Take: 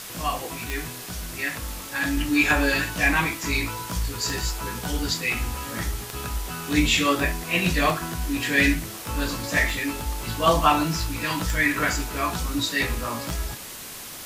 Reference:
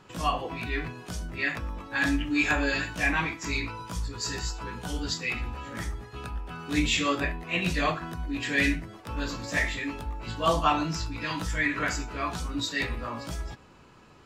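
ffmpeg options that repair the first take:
-af "adeclick=t=4,afwtdn=0.014,asetnsamples=n=441:p=0,asendcmd='2.17 volume volume -5dB',volume=0dB"

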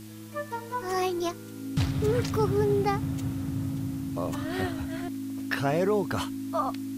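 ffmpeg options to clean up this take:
-af "bandreject=f=107.5:t=h:w=4,bandreject=f=215:t=h:w=4,bandreject=f=322.5:t=h:w=4,bandreject=f=270:w=30,afwtdn=0.0025"

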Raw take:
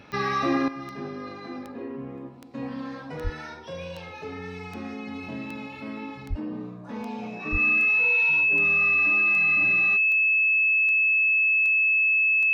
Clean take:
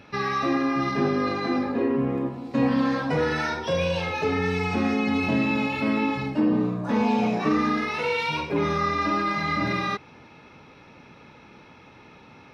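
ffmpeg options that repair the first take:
-filter_complex "[0:a]adeclick=t=4,bandreject=f=2.6k:w=30,asplit=3[a][b][c];[a]afade=t=out:st=3.23:d=0.02[d];[b]highpass=f=140:w=0.5412,highpass=f=140:w=1.3066,afade=t=in:st=3.23:d=0.02,afade=t=out:st=3.35:d=0.02[e];[c]afade=t=in:st=3.35:d=0.02[f];[d][e][f]amix=inputs=3:normalize=0,asplit=3[g][h][i];[g]afade=t=out:st=6.29:d=0.02[j];[h]highpass=f=140:w=0.5412,highpass=f=140:w=1.3066,afade=t=in:st=6.29:d=0.02,afade=t=out:st=6.41:d=0.02[k];[i]afade=t=in:st=6.41:d=0.02[l];[j][k][l]amix=inputs=3:normalize=0,asplit=3[m][n][o];[m]afade=t=out:st=7.51:d=0.02[p];[n]highpass=f=140:w=0.5412,highpass=f=140:w=1.3066,afade=t=in:st=7.51:d=0.02,afade=t=out:st=7.63:d=0.02[q];[o]afade=t=in:st=7.63:d=0.02[r];[p][q][r]amix=inputs=3:normalize=0,asetnsamples=n=441:p=0,asendcmd='0.68 volume volume 12dB',volume=0dB"

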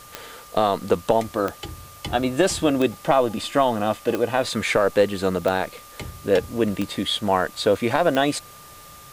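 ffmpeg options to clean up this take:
-af "adeclick=t=4,bandreject=f=1.2k:w=30,afftdn=nr=22:nf=-44"

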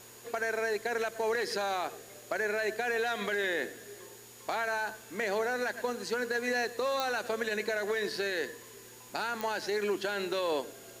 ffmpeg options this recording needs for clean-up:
-af "adeclick=t=4,bandreject=f=117.1:t=h:w=4,bandreject=f=234.2:t=h:w=4,bandreject=f=351.3:t=h:w=4,bandreject=f=468.4:t=h:w=4,bandreject=f=6.8k:w=30,afwtdn=0.0022"

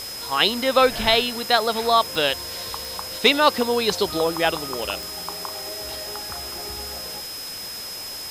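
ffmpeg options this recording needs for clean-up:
-af "adeclick=t=4,bandreject=f=5.1k:w=30,afwtdn=0.016"

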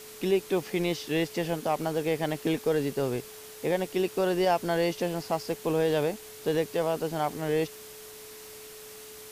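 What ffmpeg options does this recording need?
-af "adeclick=t=4,bandreject=f=430:w=30,afftdn=nr=28:nf=-46"

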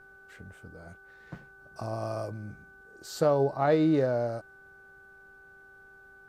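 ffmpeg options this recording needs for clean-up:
-af "bandreject=f=390.8:t=h:w=4,bandreject=f=781.6:t=h:w=4,bandreject=f=1.1724k:t=h:w=4,bandreject=f=1.5632k:t=h:w=4,bandreject=f=1.5k:w=30"

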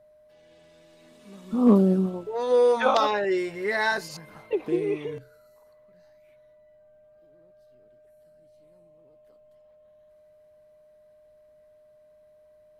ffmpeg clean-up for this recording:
-af "bandreject=f=610:w=30"

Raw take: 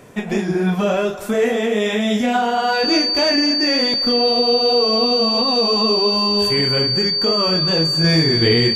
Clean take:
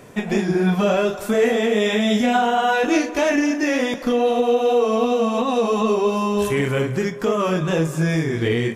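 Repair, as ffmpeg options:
-af "bandreject=f=4.6k:w=30,asetnsamples=n=441:p=0,asendcmd='8.04 volume volume -4.5dB',volume=0dB"

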